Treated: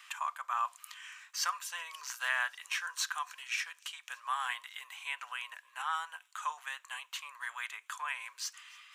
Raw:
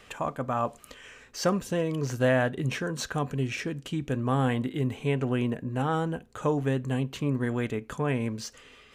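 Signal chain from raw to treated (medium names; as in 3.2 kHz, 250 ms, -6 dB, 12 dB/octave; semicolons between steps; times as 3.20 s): elliptic high-pass 1 kHz, stop band 70 dB; treble shelf 9 kHz +5 dB; feedback echo behind a high-pass 284 ms, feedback 78%, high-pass 4.7 kHz, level -23.5 dB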